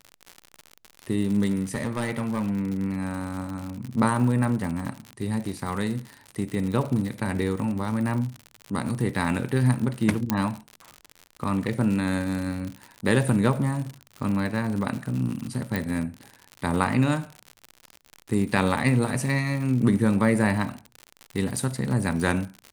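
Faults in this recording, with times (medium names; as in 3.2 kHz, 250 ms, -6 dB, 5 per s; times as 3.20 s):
crackle 87 per s -30 dBFS
1.74–2.82 s: clipped -21.5 dBFS
10.30 s: pop -7 dBFS
15.76 s: pop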